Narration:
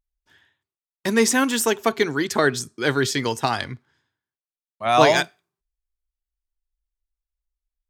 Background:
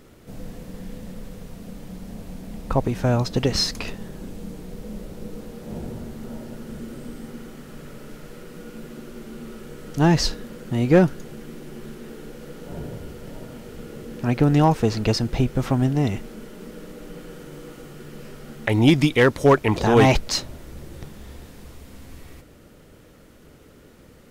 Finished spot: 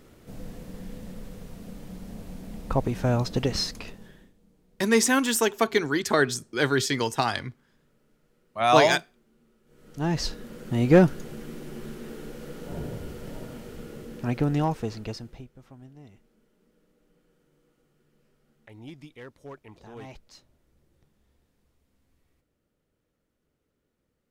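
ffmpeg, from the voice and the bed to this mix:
-filter_complex "[0:a]adelay=3750,volume=-2.5dB[a];[1:a]volume=22.5dB,afade=t=out:st=3.35:d=0.98:silence=0.0668344,afade=t=in:st=9.65:d=1.27:silence=0.0501187,afade=t=out:st=13.36:d=2.13:silence=0.0446684[b];[a][b]amix=inputs=2:normalize=0"

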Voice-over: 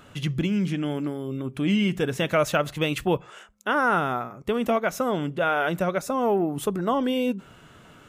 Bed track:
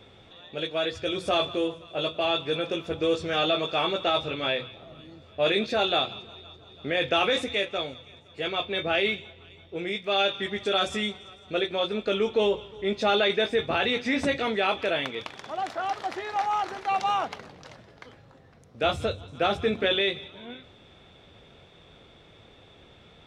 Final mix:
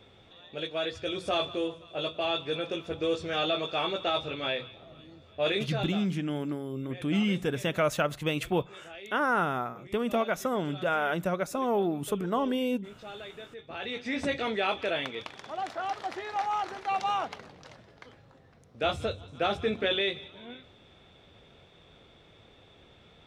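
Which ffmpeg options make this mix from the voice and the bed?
-filter_complex "[0:a]adelay=5450,volume=-4.5dB[a];[1:a]volume=13dB,afade=t=out:st=5.5:d=0.56:silence=0.149624,afade=t=in:st=13.61:d=0.75:silence=0.141254[b];[a][b]amix=inputs=2:normalize=0"

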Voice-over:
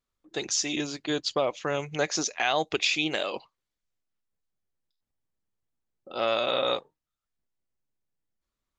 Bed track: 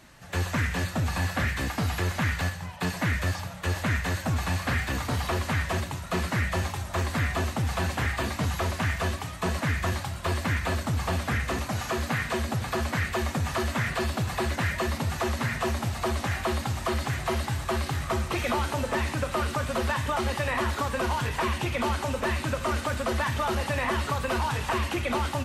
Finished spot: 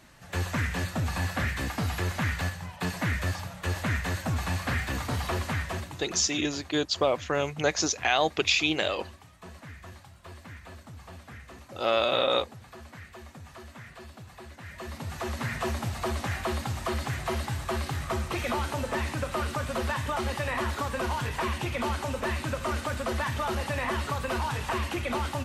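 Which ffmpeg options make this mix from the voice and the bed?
-filter_complex "[0:a]adelay=5650,volume=1.5dB[a];[1:a]volume=13.5dB,afade=t=out:st=5.4:d=0.94:silence=0.158489,afade=t=in:st=14.62:d=0.97:silence=0.16788[b];[a][b]amix=inputs=2:normalize=0"

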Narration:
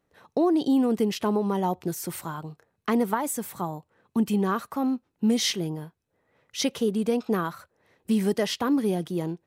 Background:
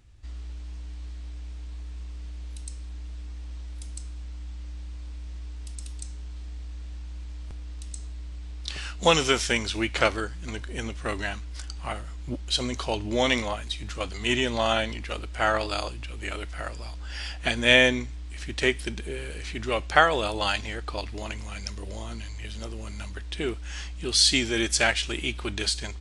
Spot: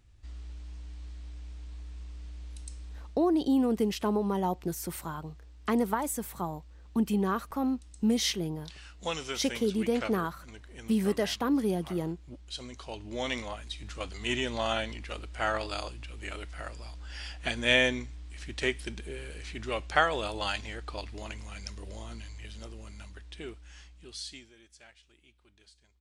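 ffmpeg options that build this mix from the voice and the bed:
-filter_complex "[0:a]adelay=2800,volume=-3.5dB[a];[1:a]volume=3dB,afade=t=out:st=2.96:d=0.24:silence=0.354813,afade=t=in:st=12.75:d=1.28:silence=0.398107,afade=t=out:st=22.17:d=2.39:silence=0.0446684[b];[a][b]amix=inputs=2:normalize=0"

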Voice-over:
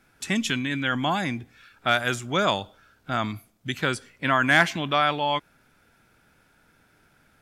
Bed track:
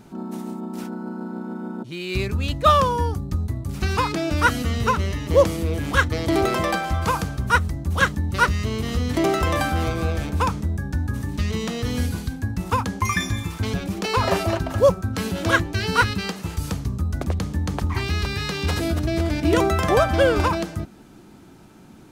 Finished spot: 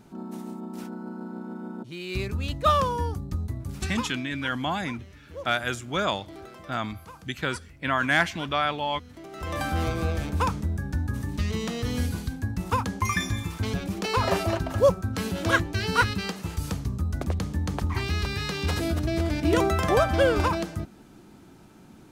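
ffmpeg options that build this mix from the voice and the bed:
-filter_complex "[0:a]adelay=3600,volume=-3.5dB[a];[1:a]volume=14.5dB,afade=t=out:st=3.66:d=0.59:silence=0.125893,afade=t=in:st=9.31:d=0.48:silence=0.1[b];[a][b]amix=inputs=2:normalize=0"

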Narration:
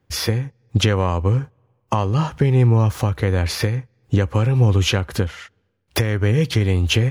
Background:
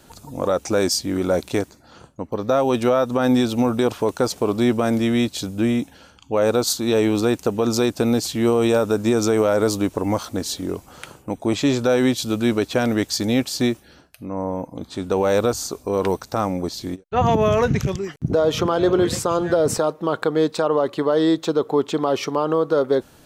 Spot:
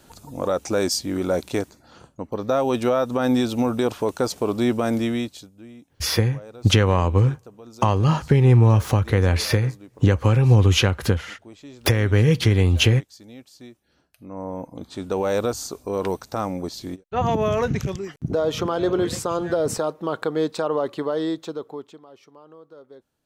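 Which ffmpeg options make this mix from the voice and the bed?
-filter_complex "[0:a]adelay=5900,volume=0.5dB[a];[1:a]volume=17dB,afade=t=out:st=5:d=0.5:silence=0.0891251,afade=t=in:st=13.8:d=0.86:silence=0.105925,afade=t=out:st=20.87:d=1.14:silence=0.0707946[b];[a][b]amix=inputs=2:normalize=0"

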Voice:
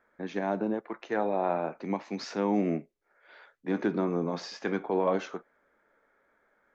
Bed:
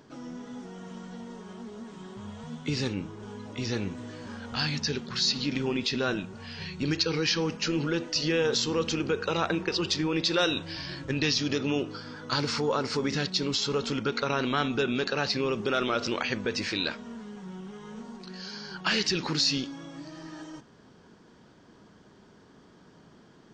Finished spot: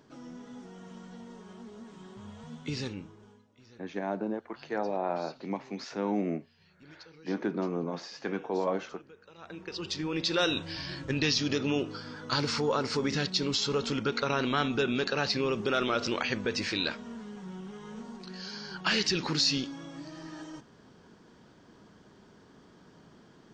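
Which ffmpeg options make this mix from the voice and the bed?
-filter_complex "[0:a]adelay=3600,volume=-3dB[a];[1:a]volume=20dB,afade=t=out:st=2.76:d=0.71:silence=0.0891251,afade=t=in:st=9.37:d=1.17:silence=0.0562341[b];[a][b]amix=inputs=2:normalize=0"

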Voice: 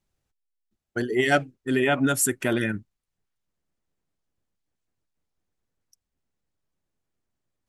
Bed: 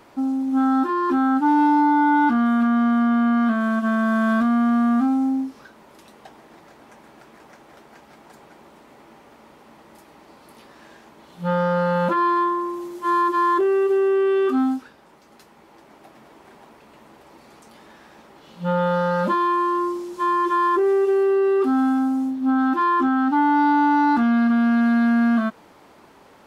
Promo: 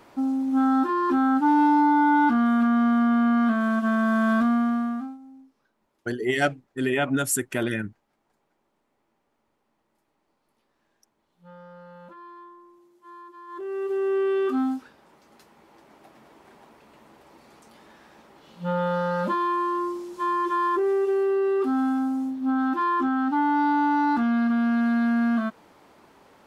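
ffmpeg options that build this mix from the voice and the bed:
-filter_complex "[0:a]adelay=5100,volume=-2dB[a];[1:a]volume=19dB,afade=t=out:st=4.47:d=0.71:silence=0.0668344,afade=t=in:st=13.47:d=0.7:silence=0.0891251[b];[a][b]amix=inputs=2:normalize=0"

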